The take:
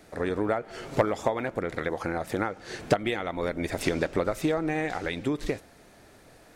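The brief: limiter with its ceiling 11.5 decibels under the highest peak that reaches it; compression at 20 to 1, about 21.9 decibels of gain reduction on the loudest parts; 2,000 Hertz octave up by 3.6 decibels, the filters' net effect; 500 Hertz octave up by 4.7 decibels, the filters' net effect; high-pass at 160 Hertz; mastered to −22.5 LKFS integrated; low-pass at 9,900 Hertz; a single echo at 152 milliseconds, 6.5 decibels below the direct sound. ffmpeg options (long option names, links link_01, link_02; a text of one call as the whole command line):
ffmpeg -i in.wav -af "highpass=160,lowpass=9900,equalizer=frequency=500:width_type=o:gain=5.5,equalizer=frequency=2000:width_type=o:gain=4,acompressor=threshold=-35dB:ratio=20,alimiter=level_in=7.5dB:limit=-24dB:level=0:latency=1,volume=-7.5dB,aecho=1:1:152:0.473,volume=20.5dB" out.wav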